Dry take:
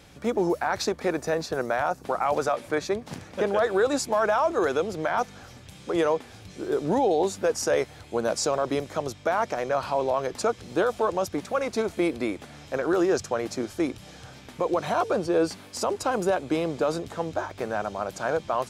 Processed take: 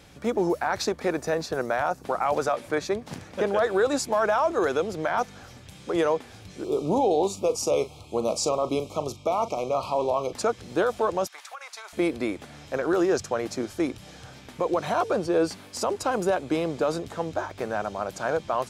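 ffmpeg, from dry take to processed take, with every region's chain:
-filter_complex "[0:a]asettb=1/sr,asplit=3[a][b][c];[a]atrim=end=6.644[d];[b]atrim=start=6.64:end=10.33,asetpts=PTS-STARTPTS,afade=t=in:d=0.004:c=qsin,afade=t=out:st=3.686:d=0.004:c=qsin,asuperstop=centerf=1700:order=12:qfactor=1.8,asplit=2[e][f];[f]adelay=40,volume=-13.5dB[g];[e][g]amix=inputs=2:normalize=0,atrim=end_sample=162729[h];[c]atrim=start=10.326[i];[d][h]acrossfade=d=0.004:c1=hsin:c2=qsin[j];[j][i]acrossfade=d=0.004:c1=qsin:c2=hsin,asettb=1/sr,asplit=3[k][l][m];[k]atrim=end=11.274[n];[l]atrim=start=11.27:end=11.93,asetpts=PTS-STARTPTS,afade=t=in:d=0.004:c=qsin,afade=t=out:st=0.656:d=0.004:c=qsin,highpass=f=920:w=0.5412,highpass=f=920:w=1.3066,acompressor=threshold=-35dB:ratio=12:attack=3.2:release=140:knee=1:detection=peak[o];[m]atrim=start=11.926[p];[n][o]acrossfade=d=0.004:c1=hsin:c2=qsin[q];[q][p]acrossfade=d=0.004:c1=qsin:c2=hsin"

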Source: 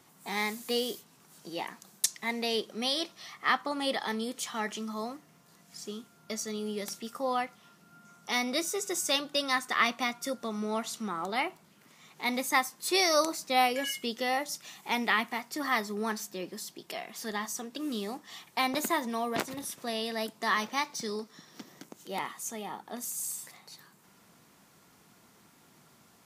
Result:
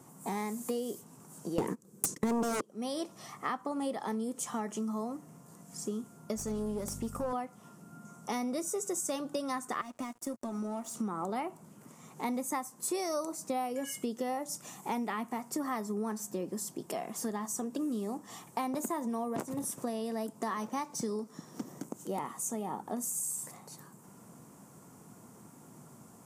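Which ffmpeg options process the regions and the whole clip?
-filter_complex "[0:a]asettb=1/sr,asplit=3[a][b][c];[a]atrim=end=1.584[d];[b]atrim=start=1.58:end=2.61,asetpts=PTS-STARTPTS,afade=t=in:d=0.004:c=qsin,afade=t=out:st=1.026:d=0.004:c=qsin,agate=range=-24dB:threshold=-47dB:ratio=16:release=100:detection=peak,lowshelf=f=570:t=q:w=3:g=6.5,aeval=exprs='0.335*sin(PI/2*7.08*val(0)/0.335)':c=same[e];[c]atrim=start=2.606[f];[d][e]acrossfade=d=0.004:c1=hsin:c2=qsin[g];[g][f]acrossfade=d=0.004:c1=qsin:c2=hsin,asettb=1/sr,asplit=3[h][i][j];[h]atrim=end=6.364[k];[i]atrim=start=6.36:end=7.33,asetpts=PTS-STARTPTS,afade=t=in:d=0.004:c=qsin,afade=t=out:st=0.966:d=0.004:c=qsin,aeval=exprs='clip(val(0),-1,0.0133)':c=same,aeval=exprs='val(0)+0.00447*(sin(2*PI*50*n/s)+sin(2*PI*2*50*n/s)/2+sin(2*PI*3*50*n/s)/3+sin(2*PI*4*50*n/s)/4+sin(2*PI*5*50*n/s)/5)':c=same[l];[j]atrim=start=7.326[m];[k][l]acrossfade=d=0.004:c1=hsin:c2=qsin[n];[n][m]acrossfade=d=0.004:c1=qsin:c2=hsin,asettb=1/sr,asplit=3[o][p][q];[o]atrim=end=9.814[r];[p]atrim=start=9.81:end=10.95,asetpts=PTS-STARTPTS,afade=t=in:d=0.004:c=qsin,afade=t=out:st=1.136:d=0.004:c=qsin,aecho=1:1:3.2:0.81,atrim=end_sample=50274,acompressor=threshold=-41dB:ratio=2.5:attack=3.2:release=140:knee=1:detection=peak,aeval=exprs='sgn(val(0))*max(abs(val(0))-0.00335,0)':c=same[s];[q]atrim=start=10.946[t];[r][s]acrossfade=d=0.004:c1=hsin:c2=qsin[u];[u][t]acrossfade=d=0.004:c1=qsin:c2=hsin,equalizer=f=125:t=o:w=1:g=10,equalizer=f=250:t=o:w=1:g=7,equalizer=f=500:t=o:w=1:g=5,equalizer=f=1k:t=o:w=1:g=5,equalizer=f=2k:t=o:w=1:g=-5,equalizer=f=4k:t=o:w=1:g=-11,equalizer=f=8k:t=o:w=1:g=9,acompressor=threshold=-32dB:ratio=6"

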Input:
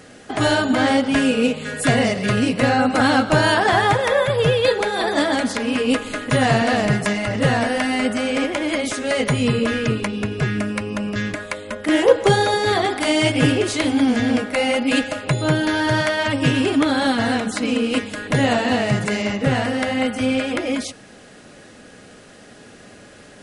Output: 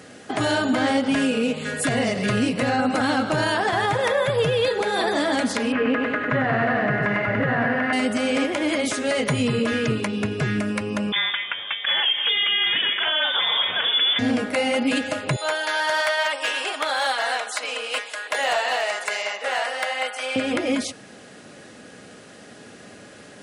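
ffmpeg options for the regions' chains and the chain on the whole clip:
-filter_complex "[0:a]asettb=1/sr,asplit=3[a][b][c];[a]atrim=end=5.724[d];[b]atrim=start=5.72:end=7.93,asetpts=PTS-STARTPTS,afade=t=in:d=0.004:c=qsin,afade=t=out:st=2.206:d=0.004:c=qsin,lowpass=f=1.7k:t=q:w=2,bandreject=f=900:w=18,aecho=1:1:99|198|297|396|495|594|693:0.501|0.266|0.141|0.0746|0.0395|0.021|0.0111,atrim=end_sample=97461[e];[c]atrim=start=7.926[f];[d][e]acrossfade=d=0.004:c1=hsin:c2=qsin[g];[g][f]acrossfade=d=0.004:c1=qsin:c2=hsin,asettb=1/sr,asplit=3[h][i][j];[h]atrim=end=11.124[k];[i]atrim=start=11.12:end=14.19,asetpts=PTS-STARTPTS,afade=t=in:d=0.004:c=qsin,afade=t=out:st=3.066:d=0.004:c=qsin,equalizer=f=2.2k:w=0.4:g=5.5,lowpass=f=3.1k:t=q:w=0.5098,lowpass=f=3.1k:t=q:w=0.6013,lowpass=f=3.1k:t=q:w=0.9,lowpass=f=3.1k:t=q:w=2.563,afreqshift=-3700[l];[j]atrim=start=14.186[m];[k][l]acrossfade=d=0.004:c1=hsin:c2=qsin[n];[n][m]acrossfade=d=0.004:c1=qsin:c2=hsin,asettb=1/sr,asplit=3[o][p][q];[o]atrim=end=15.364[r];[p]atrim=start=15.36:end=20.36,asetpts=PTS-STARTPTS,afade=t=in:d=0.004:c=qsin,afade=t=out:st=4.996:d=0.004:c=qsin,highpass=f=610:w=0.5412,highpass=f=610:w=1.3066,asoftclip=type=hard:threshold=-15.5dB[s];[q]atrim=start=20.356[t];[r][s]acrossfade=d=0.004:c1=hsin:c2=qsin[u];[u][t]acrossfade=d=0.004:c1=qsin:c2=hsin,highpass=98,alimiter=limit=-13dB:level=0:latency=1:release=78"

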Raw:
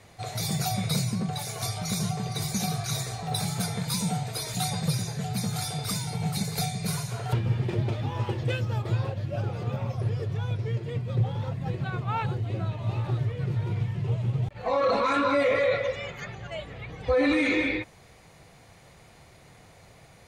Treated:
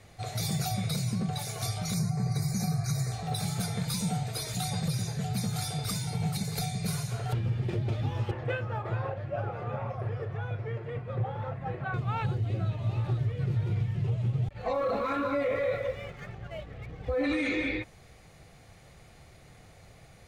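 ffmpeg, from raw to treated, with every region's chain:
-filter_complex "[0:a]asettb=1/sr,asplit=3[a][b][c];[a]atrim=end=1.944[d];[b]atrim=start=1.94:end=3.12,asetpts=PTS-STARTPTS,afade=t=in:d=0.004:c=qsin,afade=t=out:st=1.176:d=0.004:c=qsin,asuperstop=centerf=3100:order=8:qfactor=2,equalizer=f=140:w=1.9:g=8.5[e];[c]atrim=start=3.116[f];[d][e]acrossfade=d=0.004:c1=hsin:c2=qsin[g];[g][f]acrossfade=d=0.004:c1=qsin:c2=hsin,asettb=1/sr,asplit=3[h][i][j];[h]atrim=end=8.314[k];[i]atrim=start=8.31:end=11.94,asetpts=PTS-STARTPTS,afade=t=in:d=0.004:c=qsin,afade=t=out:st=3.626:d=0.004:c=qsin,acrossover=split=540 2000:gain=0.2 1 0.0794[l][m][n];[l][m][n]amix=inputs=3:normalize=0,acontrast=85,asplit=2[o][p];[p]adelay=37,volume=-12dB[q];[o][q]amix=inputs=2:normalize=0,atrim=end_sample=160083[r];[j]atrim=start=11.936[s];[k][r]acrossfade=d=0.004:c1=hsin:c2=qsin[t];[t][s]acrossfade=d=0.004:c1=qsin:c2=hsin,asettb=1/sr,asplit=3[u][v][w];[u]atrim=end=14.734[x];[v]atrim=start=14.73:end=17.24,asetpts=PTS-STARTPTS,afade=t=in:d=0.004:c=qsin,afade=t=out:st=2.506:d=0.004:c=qsin,lowpass=f=1.7k:p=1,aeval=exprs='sgn(val(0))*max(abs(val(0))-0.00237,0)':c=same[y];[w]atrim=start=17.236[z];[x][y]acrossfade=d=0.004:c1=hsin:c2=qsin[aa];[aa][z]acrossfade=d=0.004:c1=qsin:c2=hsin,lowshelf=f=77:g=9,bandreject=f=970:w=9.5,alimiter=limit=-18.5dB:level=0:latency=1:release=160,volume=-2.5dB"

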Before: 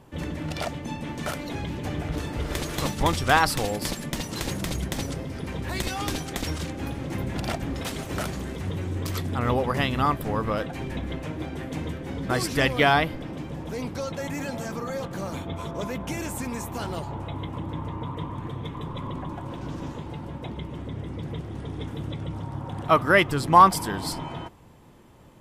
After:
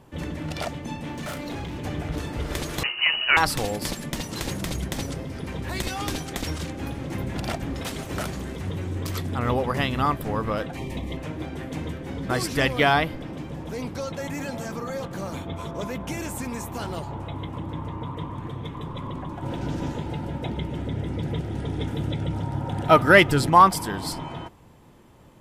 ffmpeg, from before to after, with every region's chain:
-filter_complex "[0:a]asettb=1/sr,asplit=3[a][b][c];[a]atrim=end=1.004[d];[b]atrim=start=1:end=1.81,asetpts=PTS-STARTPTS,afade=t=in:d=0.004:c=qsin,afade=t=out:st=0.806:d=0.004:c=qsin,asoftclip=type=hard:threshold=-29.5dB,asplit=2[e][f];[f]adelay=34,volume=-9dB[g];[e][g]amix=inputs=2:normalize=0,atrim=end_sample=35721[h];[c]atrim=start=1.806[i];[d][h]acrossfade=d=0.004:c1=hsin:c2=qsin[j];[j][i]acrossfade=d=0.004:c1=qsin:c2=hsin,asettb=1/sr,asplit=3[k][l][m];[k]atrim=end=2.834[n];[l]atrim=start=2.83:end=3.37,asetpts=PTS-STARTPTS,afade=t=in:d=0.004:c=qsin,afade=t=out:st=0.536:d=0.004:c=qsin,asplit=2[o][p];[p]adelay=23,volume=-14dB[q];[o][q]amix=inputs=2:normalize=0,atrim=end_sample=23814,lowpass=f=2.6k:t=q:w=0.5098,lowpass=f=2.6k:t=q:w=0.6013,lowpass=f=2.6k:t=q:w=0.9,lowpass=f=2.6k:t=q:w=2.563,afreqshift=-3000[r];[m]atrim=start=3.366[s];[n][r]acrossfade=d=0.004:c1=hsin:c2=qsin[t];[t][s]acrossfade=d=0.004:c1=qsin:c2=hsin,asettb=1/sr,asplit=3[u][v][w];[u]atrim=end=10.774[x];[v]atrim=start=10.77:end=11.17,asetpts=PTS-STARTPTS,afade=t=in:d=0.004:c=qsin,afade=t=out:st=0.396:d=0.004:c=qsin,asuperstop=centerf=1500:order=8:qfactor=2.8,highshelf=f=5.8k:g=6.5,asoftclip=type=hard:threshold=-23dB[y];[w]atrim=start=11.166[z];[x][y]acrossfade=d=0.004:c1=hsin:c2=qsin[aa];[aa][z]acrossfade=d=0.004:c1=qsin:c2=hsin,asettb=1/sr,asplit=3[ab][ac][ad];[ab]atrim=end=19.424[ae];[ac]atrim=start=19.42:end=23.5,asetpts=PTS-STARTPTS,afade=t=in:d=0.004:c=qsin,afade=t=out:st=4.076:d=0.004:c=qsin,asuperstop=centerf=1100:order=8:qfactor=6.2,acontrast=29[af];[ad]atrim=start=23.496[ag];[ae][af]acrossfade=d=0.004:c1=hsin:c2=qsin[ah];[ah][ag]acrossfade=d=0.004:c1=qsin:c2=hsin"

